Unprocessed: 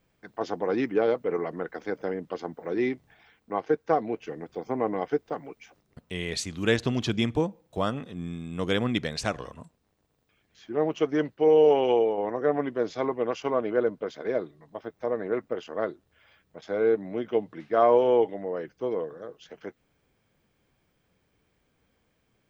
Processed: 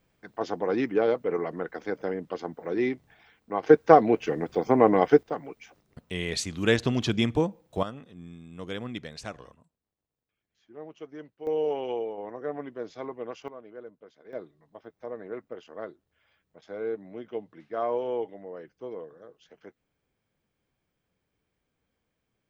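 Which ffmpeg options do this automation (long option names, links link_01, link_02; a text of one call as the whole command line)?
ffmpeg -i in.wav -af "asetnsamples=nb_out_samples=441:pad=0,asendcmd='3.63 volume volume 8.5dB;5.23 volume volume 1dB;7.83 volume volume -9.5dB;9.55 volume volume -17dB;11.47 volume volume -9dB;13.48 volume volume -19dB;14.33 volume volume -9dB',volume=0dB" out.wav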